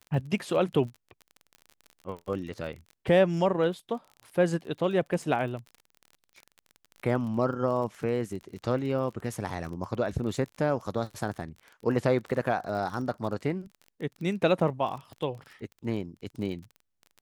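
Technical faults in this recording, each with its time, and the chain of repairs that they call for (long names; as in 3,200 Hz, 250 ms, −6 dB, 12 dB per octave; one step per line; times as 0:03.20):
surface crackle 32 per second −37 dBFS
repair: click removal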